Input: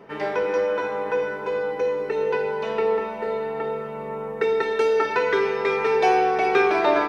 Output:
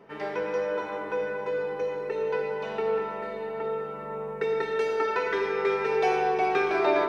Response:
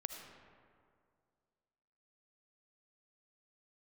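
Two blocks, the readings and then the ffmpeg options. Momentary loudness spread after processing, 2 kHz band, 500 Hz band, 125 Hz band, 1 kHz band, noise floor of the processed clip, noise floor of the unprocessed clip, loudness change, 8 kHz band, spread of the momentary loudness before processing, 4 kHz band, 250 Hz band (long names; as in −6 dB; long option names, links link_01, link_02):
9 LU, −5.0 dB, −5.0 dB, −3.5 dB, −5.5 dB, −37 dBFS, −33 dBFS, −5.0 dB, can't be measured, 9 LU, −5.5 dB, −5.0 dB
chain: -filter_complex "[1:a]atrim=start_sample=2205[link_01];[0:a][link_01]afir=irnorm=-1:irlink=0,volume=-3.5dB"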